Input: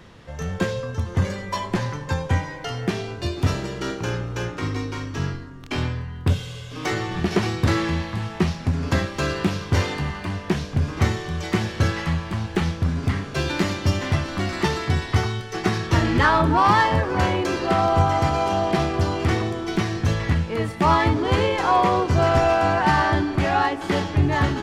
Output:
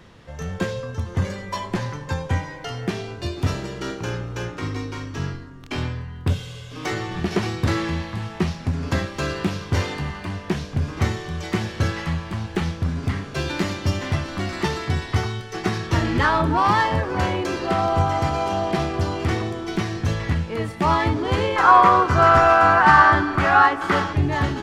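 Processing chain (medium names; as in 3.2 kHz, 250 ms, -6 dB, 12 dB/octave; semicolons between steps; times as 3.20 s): 21.56–24.13 s: peaking EQ 1.3 kHz +14.5 dB 0.92 oct; trim -1.5 dB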